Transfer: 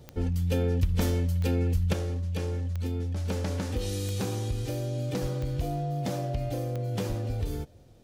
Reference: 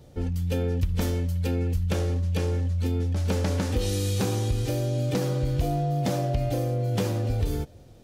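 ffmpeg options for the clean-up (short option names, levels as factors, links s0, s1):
-filter_complex "[0:a]adeclick=t=4,asplit=3[s0][s1][s2];[s0]afade=t=out:st=5.21:d=0.02[s3];[s1]highpass=f=140:w=0.5412,highpass=f=140:w=1.3066,afade=t=in:st=5.21:d=0.02,afade=t=out:st=5.33:d=0.02[s4];[s2]afade=t=in:st=5.33:d=0.02[s5];[s3][s4][s5]amix=inputs=3:normalize=0,asplit=3[s6][s7][s8];[s6]afade=t=out:st=7.08:d=0.02[s9];[s7]highpass=f=140:w=0.5412,highpass=f=140:w=1.3066,afade=t=in:st=7.08:d=0.02,afade=t=out:st=7.2:d=0.02[s10];[s8]afade=t=in:st=7.2:d=0.02[s11];[s9][s10][s11]amix=inputs=3:normalize=0,asetnsamples=n=441:p=0,asendcmd='1.93 volume volume 5dB',volume=1"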